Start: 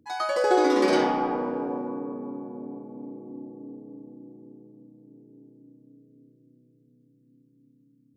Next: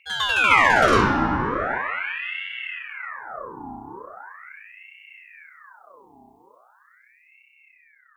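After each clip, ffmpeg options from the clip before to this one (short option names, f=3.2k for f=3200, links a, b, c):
-filter_complex "[0:a]equalizer=f=4.5k:w=0.87:g=-5,acrossover=split=2200[a][b];[b]dynaudnorm=f=310:g=9:m=9.5dB[c];[a][c]amix=inputs=2:normalize=0,aeval=exprs='val(0)*sin(2*PI*1500*n/s+1500*0.65/0.4*sin(2*PI*0.4*n/s))':c=same,volume=7.5dB"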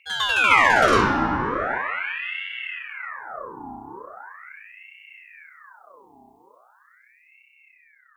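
-af "bass=f=250:g=-3,treble=f=4k:g=1"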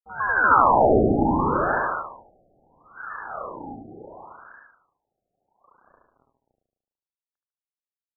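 -filter_complex "[0:a]aeval=exprs='sgn(val(0))*max(abs(val(0))-0.00562,0)':c=same,asplit=2[a][b];[b]aecho=0:1:74|148|222|296|370|444|518|592:0.596|0.334|0.187|0.105|0.0586|0.0328|0.0184|0.0103[c];[a][c]amix=inputs=2:normalize=0,afftfilt=real='re*lt(b*sr/1024,770*pow(1800/770,0.5+0.5*sin(2*PI*0.71*pts/sr)))':imag='im*lt(b*sr/1024,770*pow(1800/770,0.5+0.5*sin(2*PI*0.71*pts/sr)))':win_size=1024:overlap=0.75,volume=2dB"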